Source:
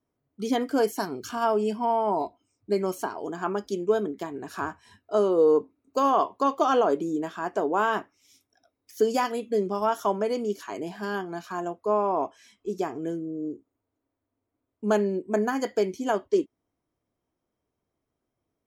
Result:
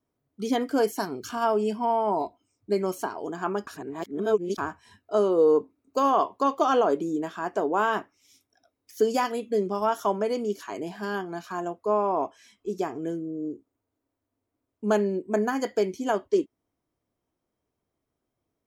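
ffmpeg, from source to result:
-filter_complex "[0:a]asplit=3[a][b][c];[a]atrim=end=3.672[d];[b]atrim=start=3.668:end=4.582,asetpts=PTS-STARTPTS,areverse[e];[c]atrim=start=4.578[f];[d][e]acrossfade=d=0.004:c1=hsin:c2=hsin[g];[g][f]acrossfade=d=0.004:c1=hsin:c2=hsin"

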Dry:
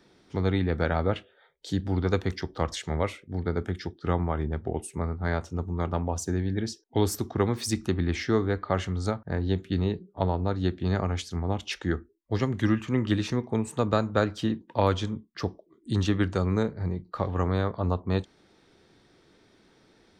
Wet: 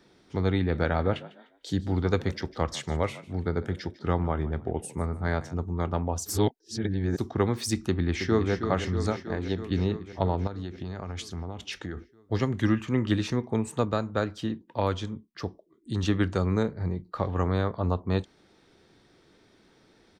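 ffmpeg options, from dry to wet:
-filter_complex "[0:a]asplit=3[a][b][c];[a]afade=t=out:st=0.71:d=0.02[d];[b]asplit=4[e][f][g][h];[f]adelay=150,afreqshift=60,volume=-18.5dB[i];[g]adelay=300,afreqshift=120,volume=-29dB[j];[h]adelay=450,afreqshift=180,volume=-39.4dB[k];[e][i][j][k]amix=inputs=4:normalize=0,afade=t=in:st=0.71:d=0.02,afade=t=out:st=5.54:d=0.02[l];[c]afade=t=in:st=5.54:d=0.02[m];[d][l][m]amix=inputs=3:normalize=0,asplit=2[n][o];[o]afade=t=in:st=7.88:d=0.01,afade=t=out:st=8.52:d=0.01,aecho=0:1:320|640|960|1280|1600|1920|2240|2560|2880|3200|3520|3840:0.398107|0.29858|0.223935|0.167951|0.125964|0.0944727|0.0708545|0.0531409|0.0398557|0.0298918|0.0224188|0.0168141[p];[n][p]amix=inputs=2:normalize=0,asettb=1/sr,asplit=3[q][r][s];[q]atrim=end=9.134[t];[r]atrim=start=9.13:end=9.58,asetpts=PTS-STARTPTS,afade=t=in:d=0.004:c=qsin,afade=t=out:st=0.446:d=0.004:c=qsin,equalizer=f=91:t=o:w=2.4:g=-6.5[u];[s]atrim=start=9.576[v];[t][u]acrossfade=d=0.004:c1=hsin:c2=qsin[w];[w][v]acrossfade=d=0.004:c1=qsin:c2=hsin,asettb=1/sr,asplit=3[x][y][z];[x]atrim=end=10.474[aa];[y]atrim=start=10.47:end=11.97,asetpts=PTS-STARTPTS,afade=t=in:d=0.004:c=qsin,afade=t=out:st=1.496:d=0.004:c=qsin,acompressor=threshold=-30dB:ratio=12:attack=3.2:release=140:knee=1:detection=peak[ab];[z]atrim=start=11.966[ac];[aa][ab]acrossfade=d=0.004:c1=hsin:c2=qsin[ad];[ad][ac]acrossfade=d=0.004:c1=qsin:c2=hsin,asplit=5[ae][af][ag][ah][ai];[ae]atrim=end=6.262[aj];[af]atrim=start=6.258:end=7.182,asetpts=PTS-STARTPTS,areverse[ak];[ag]atrim=start=7.178:end=13.852[al];[ah]atrim=start=13.848:end=16.032,asetpts=PTS-STARTPTS,volume=-3.5dB[am];[ai]atrim=start=16.028[an];[aj][ak]acrossfade=d=0.004:c1=hsin:c2=hsin[ao];[ao][al]acrossfade=d=0.004:c1=hsin:c2=hsin[ap];[ap][am]acrossfade=d=0.004:c1=hsin:c2=hsin[aq];[aq][an]acrossfade=d=0.004:c1=hsin:c2=hsin"

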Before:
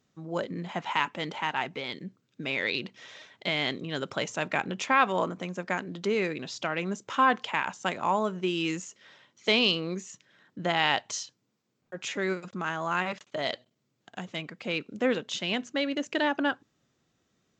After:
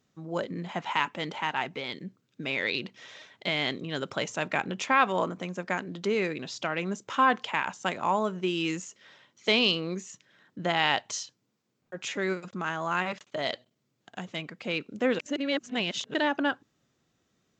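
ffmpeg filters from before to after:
-filter_complex "[0:a]asplit=3[a][b][c];[a]atrim=end=15.192[d];[b]atrim=start=15.188:end=16.142,asetpts=PTS-STARTPTS,areverse[e];[c]atrim=start=16.138[f];[d][e]acrossfade=d=0.004:c1=hsin:c2=hsin[g];[g][f]acrossfade=d=0.004:c1=hsin:c2=hsin"

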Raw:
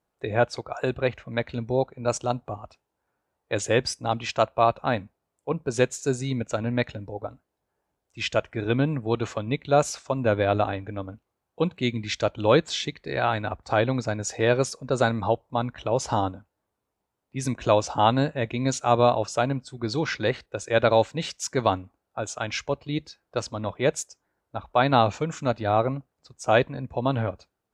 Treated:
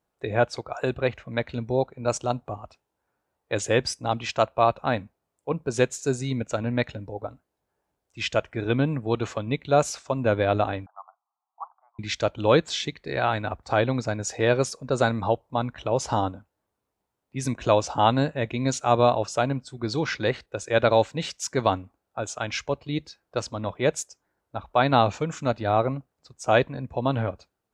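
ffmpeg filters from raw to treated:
-filter_complex "[0:a]asettb=1/sr,asplit=3[a][b][c];[a]atrim=end=10.864[d];[b]atrim=start=10.86:end=11.99,asetpts=PTS-STARTPTS,afade=t=in:d=0.004:c=qsin,afade=t=out:st=1.126:d=0.004:c=qsin,asuperpass=centerf=970:order=12:qfactor=1.6[e];[c]atrim=start=11.986[f];[d][e]acrossfade=d=0.004:c1=hsin:c2=qsin[g];[g][f]acrossfade=d=0.004:c1=qsin:c2=hsin"

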